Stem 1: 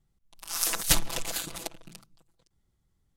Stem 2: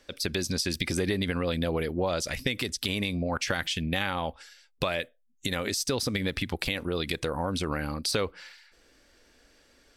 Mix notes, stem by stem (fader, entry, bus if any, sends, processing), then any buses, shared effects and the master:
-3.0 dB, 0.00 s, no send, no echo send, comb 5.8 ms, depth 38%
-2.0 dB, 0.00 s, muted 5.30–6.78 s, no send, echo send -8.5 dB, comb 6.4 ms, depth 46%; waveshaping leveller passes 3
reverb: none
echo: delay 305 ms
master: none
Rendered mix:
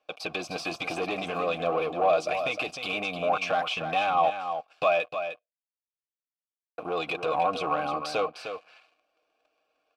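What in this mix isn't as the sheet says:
stem 2 -2.0 dB -> +6.0 dB; master: extra vowel filter a

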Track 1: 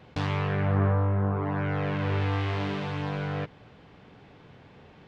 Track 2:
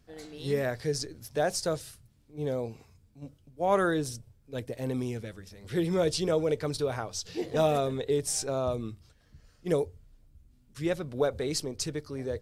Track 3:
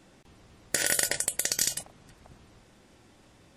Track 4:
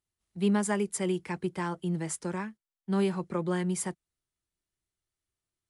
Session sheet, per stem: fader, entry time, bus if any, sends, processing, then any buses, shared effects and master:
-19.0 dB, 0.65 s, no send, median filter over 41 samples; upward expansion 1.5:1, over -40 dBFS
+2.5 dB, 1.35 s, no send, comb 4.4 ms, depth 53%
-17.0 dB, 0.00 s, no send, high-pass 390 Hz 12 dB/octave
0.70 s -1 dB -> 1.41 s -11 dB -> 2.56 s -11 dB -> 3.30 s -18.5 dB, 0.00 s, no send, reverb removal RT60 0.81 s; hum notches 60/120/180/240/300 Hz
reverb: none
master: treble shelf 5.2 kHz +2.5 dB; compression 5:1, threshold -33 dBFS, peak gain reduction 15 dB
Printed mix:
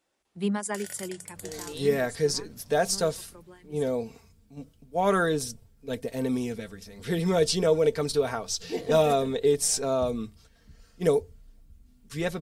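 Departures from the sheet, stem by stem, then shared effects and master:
stem 1 -19.0 dB -> -28.5 dB; master: missing compression 5:1, threshold -33 dBFS, peak gain reduction 15 dB

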